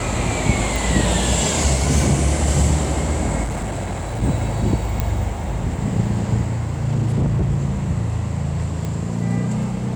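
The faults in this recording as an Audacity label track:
0.760000	0.760000	pop
3.430000	4.230000	clipped -21 dBFS
5.000000	5.000000	pop -7 dBFS
6.810000	7.590000	clipped -14.5 dBFS
8.850000	8.850000	pop -15 dBFS

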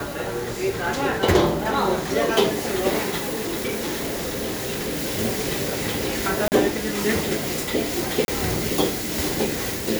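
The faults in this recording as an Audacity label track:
3.190000	5.190000	clipped -22.5 dBFS
6.480000	6.520000	dropout 39 ms
8.250000	8.280000	dropout 31 ms

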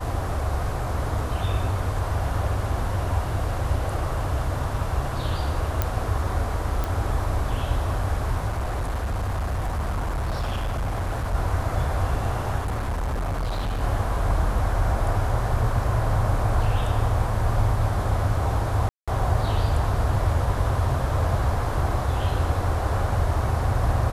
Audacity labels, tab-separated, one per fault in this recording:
5.820000	5.820000	pop -8 dBFS
6.840000	6.840000	pop
8.470000	11.350000	clipped -22.5 dBFS
12.580000	13.830000	clipped -23 dBFS
18.890000	19.080000	dropout 186 ms

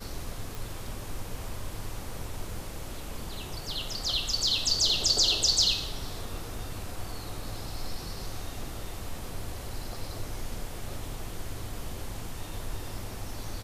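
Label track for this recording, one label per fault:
0.550000	0.550000	pop

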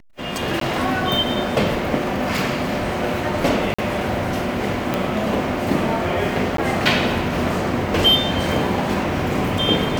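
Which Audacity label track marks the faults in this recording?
0.600000	0.610000	dropout 13 ms
3.740000	3.790000	dropout 45 ms
4.940000	4.940000	pop -6 dBFS
6.570000	6.580000	dropout 13 ms

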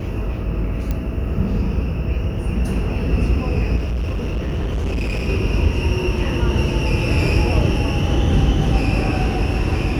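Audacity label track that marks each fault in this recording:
0.910000	0.910000	pop -11 dBFS
3.760000	5.290000	clipped -18.5 dBFS

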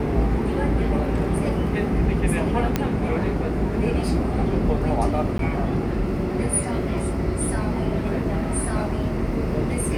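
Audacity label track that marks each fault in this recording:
2.760000	2.760000	pop -7 dBFS
5.380000	5.390000	dropout 12 ms

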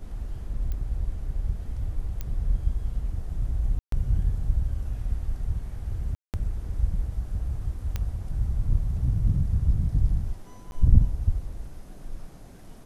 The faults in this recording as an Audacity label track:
0.720000	0.720000	pop -21 dBFS
2.210000	2.210000	pop -18 dBFS
3.790000	3.920000	dropout 133 ms
6.150000	6.340000	dropout 188 ms
7.960000	7.960000	pop -16 dBFS
10.710000	10.720000	dropout

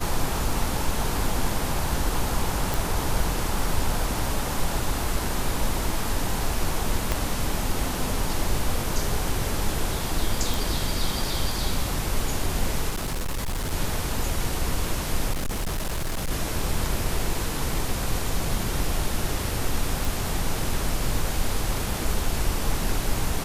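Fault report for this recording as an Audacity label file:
2.740000	2.740000	pop
7.120000	7.120000	pop -8 dBFS
10.540000	10.540000	pop
12.890000	13.730000	clipped -24 dBFS
15.320000	16.310000	clipped -23.5 dBFS
20.050000	20.050000	pop

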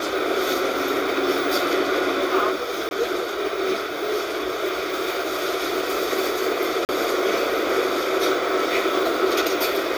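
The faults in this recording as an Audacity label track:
2.890000	2.910000	dropout 21 ms
6.850000	6.890000	dropout 39 ms

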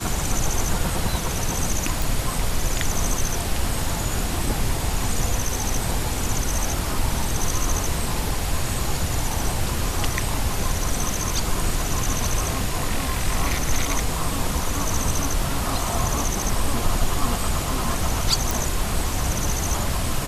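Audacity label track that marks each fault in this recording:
2.020000	2.020000	pop
18.510000	18.510000	pop

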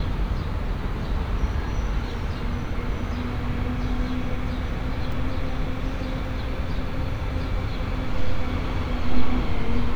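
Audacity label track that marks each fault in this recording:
5.120000	5.120000	dropout 3.3 ms

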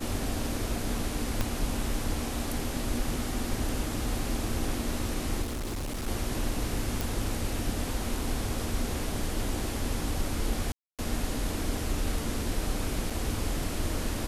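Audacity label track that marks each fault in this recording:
1.410000	1.410000	pop -13 dBFS
5.420000	6.080000	clipped -30.5 dBFS
7.010000	7.010000	pop
10.720000	10.990000	dropout 267 ms
13.100000	13.100000	dropout 4.3 ms

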